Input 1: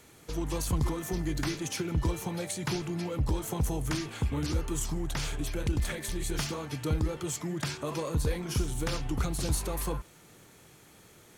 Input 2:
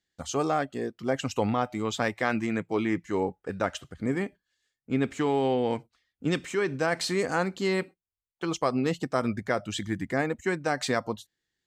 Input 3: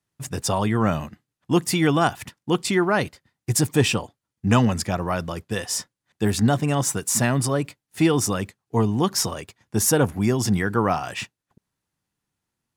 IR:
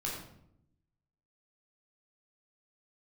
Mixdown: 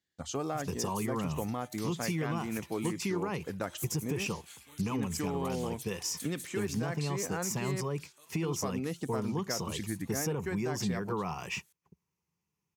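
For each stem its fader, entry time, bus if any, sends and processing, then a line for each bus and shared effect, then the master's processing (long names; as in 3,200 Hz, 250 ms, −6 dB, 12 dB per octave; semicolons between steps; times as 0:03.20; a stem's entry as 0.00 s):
0:06.32 −1.5 dB → 0:06.73 −9 dB, 0.35 s, no send, first difference
−4.5 dB, 0.00 s, no send, no processing
−7.0 dB, 0.35 s, no send, EQ curve with evenly spaced ripples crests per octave 0.78, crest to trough 10 dB; brickwall limiter −11.5 dBFS, peak gain reduction 8 dB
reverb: not used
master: high-pass filter 83 Hz; low-shelf EQ 190 Hz +6.5 dB; downward compressor 3 to 1, threshold −32 dBFS, peak gain reduction 10 dB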